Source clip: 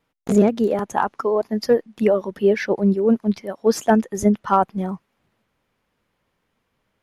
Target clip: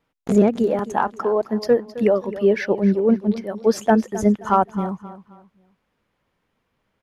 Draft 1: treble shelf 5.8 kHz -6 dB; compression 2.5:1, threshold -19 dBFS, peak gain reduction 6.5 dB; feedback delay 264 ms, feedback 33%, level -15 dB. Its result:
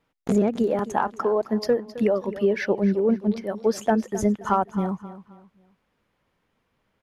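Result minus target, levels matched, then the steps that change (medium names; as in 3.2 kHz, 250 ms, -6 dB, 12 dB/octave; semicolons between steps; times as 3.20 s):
compression: peak gain reduction +6.5 dB
remove: compression 2.5:1, threshold -19 dBFS, peak gain reduction 6.5 dB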